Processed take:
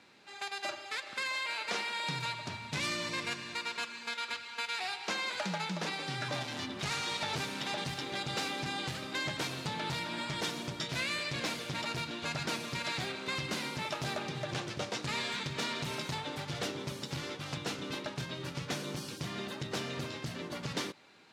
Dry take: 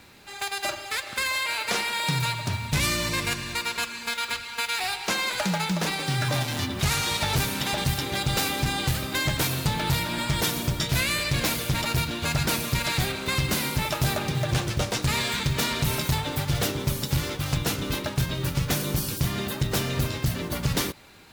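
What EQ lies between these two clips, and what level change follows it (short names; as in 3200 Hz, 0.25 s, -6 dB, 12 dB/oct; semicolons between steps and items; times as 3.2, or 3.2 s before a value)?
BPF 190–6200 Hz; -8.0 dB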